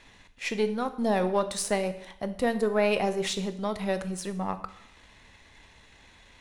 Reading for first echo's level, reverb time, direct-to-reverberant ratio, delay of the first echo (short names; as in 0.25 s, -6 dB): none, 0.70 s, 10.0 dB, none